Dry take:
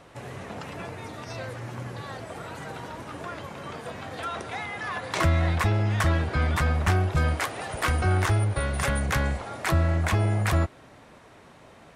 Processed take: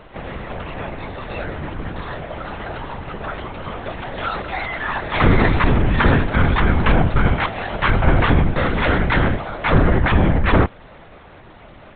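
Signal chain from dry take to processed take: LPC vocoder at 8 kHz whisper; trim +8.5 dB

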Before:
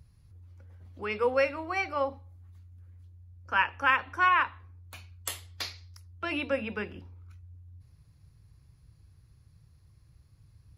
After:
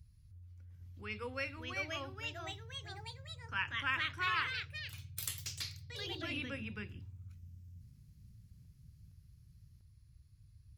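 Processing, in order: amplifier tone stack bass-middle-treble 6-0-2; ever faster or slower copies 748 ms, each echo +3 st, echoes 3; trim +10 dB

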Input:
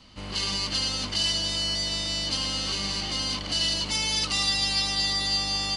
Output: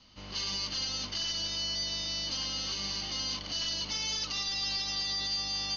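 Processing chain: one-sided wavefolder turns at -22 dBFS; Chebyshev low-pass 6.6 kHz, order 10; treble shelf 5.1 kHz +9 dB; peak limiter -16.5 dBFS, peak gain reduction 4.5 dB; trim -8 dB

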